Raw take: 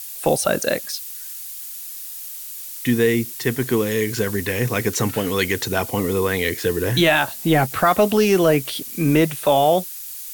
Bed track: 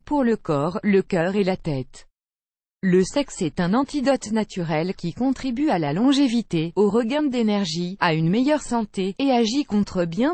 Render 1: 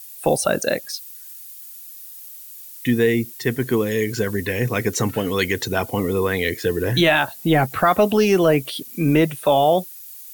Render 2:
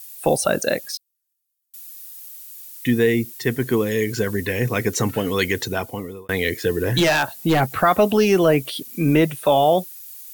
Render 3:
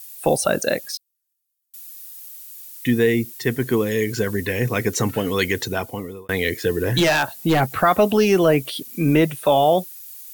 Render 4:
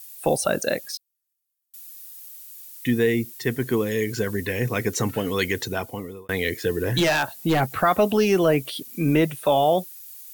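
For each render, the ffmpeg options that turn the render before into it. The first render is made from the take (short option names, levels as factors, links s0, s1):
-af "afftdn=nr=9:nf=-34"
-filter_complex "[0:a]asettb=1/sr,asplit=3[s0][s1][s2];[s0]atrim=end=0.974[s3];[s1]atrim=start=0.97:end=1.74,asetpts=PTS-STARTPTS,afade=t=in:d=0.004:c=qsin,afade=t=out:st=0.766:d=0.004:c=qsin,agate=range=0.0126:threshold=0.02:ratio=16:release=100:detection=peak[s4];[s2]atrim=start=1.736[s5];[s3][s4]acrossfade=d=0.004:c1=hsin:c2=qsin[s6];[s6][s5]acrossfade=d=0.004:c1=qsin:c2=hsin,asplit=3[s7][s8][s9];[s7]afade=t=out:st=6.86:d=0.02[s10];[s8]aeval=exprs='0.282*(abs(mod(val(0)/0.282+3,4)-2)-1)':c=same,afade=t=in:st=6.86:d=0.02,afade=t=out:st=7.59:d=0.02[s11];[s9]afade=t=in:st=7.59:d=0.02[s12];[s10][s11][s12]amix=inputs=3:normalize=0,asplit=2[s13][s14];[s13]atrim=end=6.29,asetpts=PTS-STARTPTS,afade=t=out:st=5.57:d=0.72[s15];[s14]atrim=start=6.29,asetpts=PTS-STARTPTS,afade=t=in:d=0.004:c=hsin[s16];[s15][s16]concat=n=2:v=0:a=1"
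-af anull
-af "volume=0.708"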